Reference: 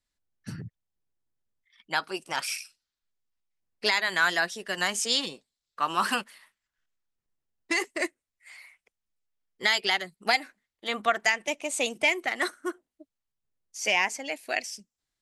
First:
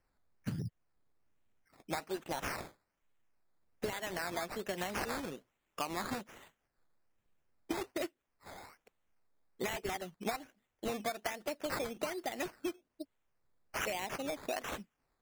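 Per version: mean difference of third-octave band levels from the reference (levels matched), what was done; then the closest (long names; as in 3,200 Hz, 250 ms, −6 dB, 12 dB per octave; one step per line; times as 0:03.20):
12.0 dB: flat-topped bell 2,100 Hz −10.5 dB 2.4 octaves
downward compressor 12 to 1, threshold −41 dBFS, peak gain reduction 19.5 dB
sample-and-hold swept by an LFO 12×, swing 60% 1.2 Hz
level +7 dB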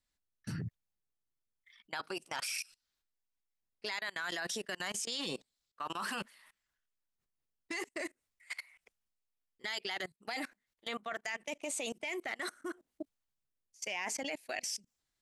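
4.5 dB: reversed playback
downward compressor 6 to 1, threshold −38 dBFS, peak gain reduction 18.5 dB
reversed playback
brickwall limiter −33.5 dBFS, peak gain reduction 10.5 dB
output level in coarse steps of 24 dB
level +10 dB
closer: second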